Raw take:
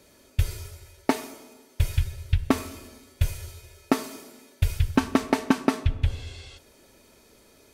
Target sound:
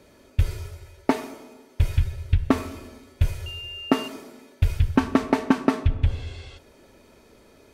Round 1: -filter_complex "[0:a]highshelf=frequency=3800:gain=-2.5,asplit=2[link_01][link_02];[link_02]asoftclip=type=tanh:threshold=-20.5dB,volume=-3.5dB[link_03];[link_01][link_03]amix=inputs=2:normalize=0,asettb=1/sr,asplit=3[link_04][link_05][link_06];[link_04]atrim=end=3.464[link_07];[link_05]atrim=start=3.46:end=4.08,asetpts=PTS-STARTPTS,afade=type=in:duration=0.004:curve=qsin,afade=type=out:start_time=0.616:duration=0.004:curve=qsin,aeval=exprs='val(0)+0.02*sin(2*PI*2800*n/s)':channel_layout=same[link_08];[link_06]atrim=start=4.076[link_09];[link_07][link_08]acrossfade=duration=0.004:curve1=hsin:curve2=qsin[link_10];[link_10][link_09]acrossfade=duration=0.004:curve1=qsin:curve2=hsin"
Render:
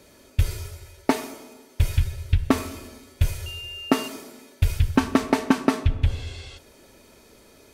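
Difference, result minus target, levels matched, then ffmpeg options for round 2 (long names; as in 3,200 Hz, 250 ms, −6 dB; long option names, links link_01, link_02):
8,000 Hz band +7.0 dB
-filter_complex "[0:a]highshelf=frequency=3800:gain=-11.5,asplit=2[link_01][link_02];[link_02]asoftclip=type=tanh:threshold=-20.5dB,volume=-3.5dB[link_03];[link_01][link_03]amix=inputs=2:normalize=0,asettb=1/sr,asplit=3[link_04][link_05][link_06];[link_04]atrim=end=3.464[link_07];[link_05]atrim=start=3.46:end=4.08,asetpts=PTS-STARTPTS,afade=type=in:duration=0.004:curve=qsin,afade=type=out:start_time=0.616:duration=0.004:curve=qsin,aeval=exprs='val(0)+0.02*sin(2*PI*2800*n/s)':channel_layout=same[link_08];[link_06]atrim=start=4.076[link_09];[link_07][link_08]acrossfade=duration=0.004:curve1=hsin:curve2=qsin[link_10];[link_10][link_09]acrossfade=duration=0.004:curve1=qsin:curve2=hsin"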